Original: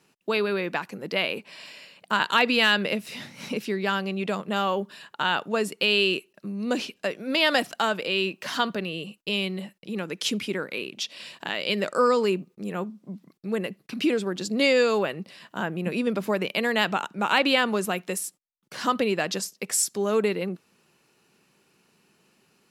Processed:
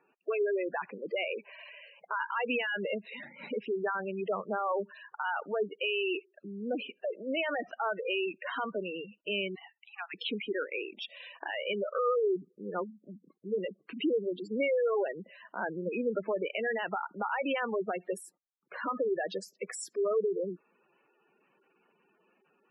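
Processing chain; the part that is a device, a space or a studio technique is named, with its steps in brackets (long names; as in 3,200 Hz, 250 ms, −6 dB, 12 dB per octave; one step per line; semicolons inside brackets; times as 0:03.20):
DJ mixer with the lows and highs turned down (three-way crossover with the lows and the highs turned down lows −13 dB, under 320 Hz, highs −15 dB, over 2,900 Hz; brickwall limiter −20.5 dBFS, peak gain reduction 12 dB)
0:09.55–0:10.14: Butterworth high-pass 690 Hz 96 dB per octave
gate on every frequency bin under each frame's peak −10 dB strong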